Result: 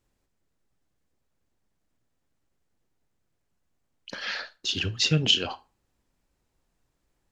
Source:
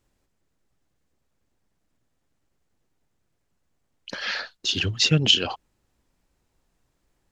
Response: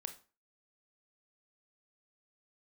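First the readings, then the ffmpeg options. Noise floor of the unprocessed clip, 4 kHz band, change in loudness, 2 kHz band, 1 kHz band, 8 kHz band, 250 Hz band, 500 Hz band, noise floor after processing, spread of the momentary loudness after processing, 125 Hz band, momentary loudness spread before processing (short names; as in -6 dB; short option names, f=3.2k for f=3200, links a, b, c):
-74 dBFS, -3.5 dB, -3.5 dB, -3.5 dB, -3.5 dB, -3.5 dB, -3.5 dB, -3.5 dB, -77 dBFS, 16 LU, -3.5 dB, 16 LU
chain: -filter_complex "[0:a]asplit=2[a][b];[1:a]atrim=start_sample=2205,asetrate=52920,aresample=44100[c];[b][c]afir=irnorm=-1:irlink=0,volume=3dB[d];[a][d]amix=inputs=2:normalize=0,volume=-8.5dB"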